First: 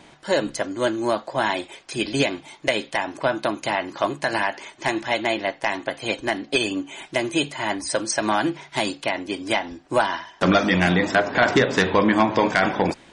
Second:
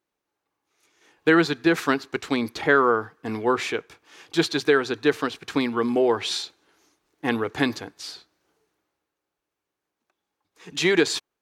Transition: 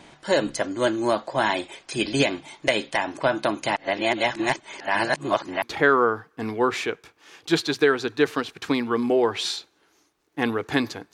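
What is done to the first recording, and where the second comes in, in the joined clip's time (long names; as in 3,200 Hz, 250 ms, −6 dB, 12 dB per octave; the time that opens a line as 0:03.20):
first
0:03.76–0:05.62: reverse
0:05.62: continue with second from 0:02.48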